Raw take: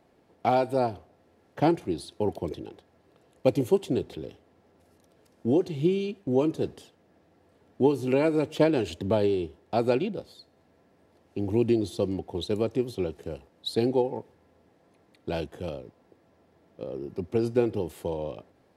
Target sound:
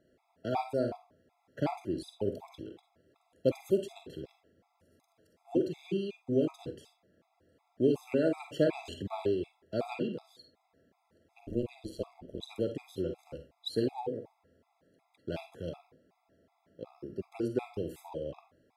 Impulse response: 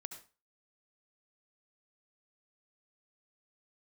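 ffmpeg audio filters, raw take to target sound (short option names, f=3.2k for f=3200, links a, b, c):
-filter_complex "[0:a]asplit=3[a][b][c];[a]afade=t=out:st=11.39:d=0.02[d];[b]tremolo=f=130:d=0.947,afade=t=in:st=11.39:d=0.02,afade=t=out:st=12.48:d=0.02[e];[c]afade=t=in:st=12.48:d=0.02[f];[d][e][f]amix=inputs=3:normalize=0[g];[1:a]atrim=start_sample=2205,asetrate=70560,aresample=44100[h];[g][h]afir=irnorm=-1:irlink=0,afftfilt=real='re*gt(sin(2*PI*2.7*pts/sr)*(1-2*mod(floor(b*sr/1024/670),2)),0)':imag='im*gt(sin(2*PI*2.7*pts/sr)*(1-2*mod(floor(b*sr/1024/670),2)),0)':win_size=1024:overlap=0.75,volume=4dB"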